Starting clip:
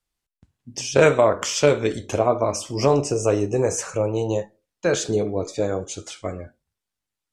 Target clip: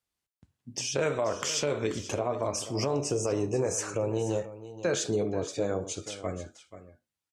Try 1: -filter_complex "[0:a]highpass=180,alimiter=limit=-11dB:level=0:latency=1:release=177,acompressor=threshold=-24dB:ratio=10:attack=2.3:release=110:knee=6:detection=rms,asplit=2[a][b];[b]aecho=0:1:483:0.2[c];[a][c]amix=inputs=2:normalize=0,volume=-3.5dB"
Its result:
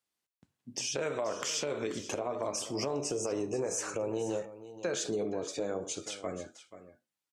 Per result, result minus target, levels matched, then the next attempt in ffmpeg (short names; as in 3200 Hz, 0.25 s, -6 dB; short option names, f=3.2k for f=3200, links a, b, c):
125 Hz band -6.5 dB; compressor: peak gain reduction +6 dB
-filter_complex "[0:a]highpass=66,alimiter=limit=-11dB:level=0:latency=1:release=177,acompressor=threshold=-24dB:ratio=10:attack=2.3:release=110:knee=6:detection=rms,asplit=2[a][b];[b]aecho=0:1:483:0.2[c];[a][c]amix=inputs=2:normalize=0,volume=-3.5dB"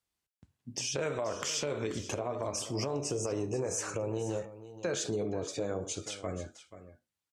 compressor: peak gain reduction +6 dB
-filter_complex "[0:a]highpass=66,alimiter=limit=-11dB:level=0:latency=1:release=177,acompressor=threshold=-17dB:ratio=10:attack=2.3:release=110:knee=6:detection=rms,asplit=2[a][b];[b]aecho=0:1:483:0.2[c];[a][c]amix=inputs=2:normalize=0,volume=-3.5dB"